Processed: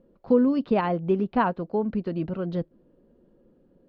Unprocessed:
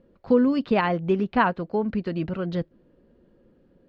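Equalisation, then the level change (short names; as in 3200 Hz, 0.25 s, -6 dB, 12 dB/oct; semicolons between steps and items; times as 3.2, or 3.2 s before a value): bell 76 Hz -7.5 dB 1.1 oct; bell 1900 Hz -6 dB 1.2 oct; high shelf 3700 Hz -10.5 dB; 0.0 dB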